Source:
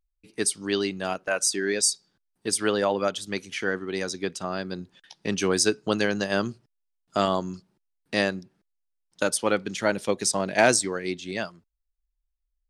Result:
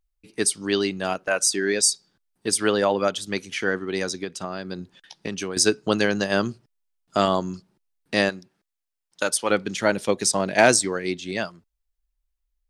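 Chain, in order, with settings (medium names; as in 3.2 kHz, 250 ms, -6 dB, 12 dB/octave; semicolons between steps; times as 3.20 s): 4.11–5.57 s: compression 12:1, threshold -29 dBFS, peak gain reduction 12 dB; 8.29–9.50 s: bass shelf 420 Hz -9.5 dB; trim +3 dB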